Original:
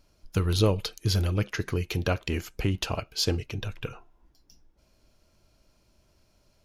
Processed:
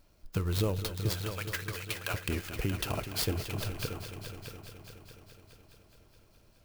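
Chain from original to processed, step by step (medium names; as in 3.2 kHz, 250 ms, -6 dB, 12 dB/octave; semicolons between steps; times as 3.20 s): 1.09–2.14 s: high-pass 1.1 kHz 12 dB/octave; compression 2:1, threshold -32 dBFS, peak gain reduction 8.5 dB; multi-head delay 210 ms, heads all three, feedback 56%, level -13 dB; sampling jitter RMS 0.032 ms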